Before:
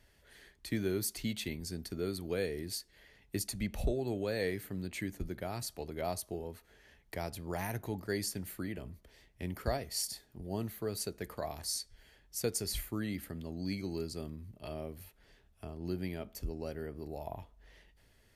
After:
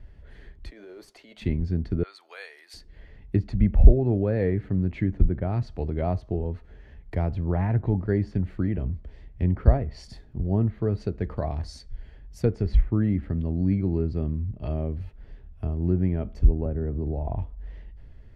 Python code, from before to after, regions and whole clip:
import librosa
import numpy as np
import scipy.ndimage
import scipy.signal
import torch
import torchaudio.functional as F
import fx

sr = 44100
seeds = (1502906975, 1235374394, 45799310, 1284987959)

y = fx.chain(x, sr, fx.over_compress(threshold_db=-37.0, ratio=-1.0),
    fx.ladder_highpass(hz=440.0, resonance_pct=30),
    fx.quant_float(bits=2), at=(0.7, 1.42))
y = fx.chain(y, sr, fx.highpass(hz=920.0, slope=24),
    fx.high_shelf(hz=6400.0, db=8.5), at=(2.03, 2.74))
y = fx.chain(y, sr, fx.lowpass(hz=1000.0, slope=6),
    fx.band_squash(depth_pct=70), at=(16.65, 17.28))
y = fx.riaa(y, sr, side='playback')
y = fx.env_lowpass_down(y, sr, base_hz=2000.0, full_db=-24.5)
y = fx.high_shelf(y, sr, hz=5900.0, db=-10.5)
y = F.gain(torch.from_numpy(y), 5.5).numpy()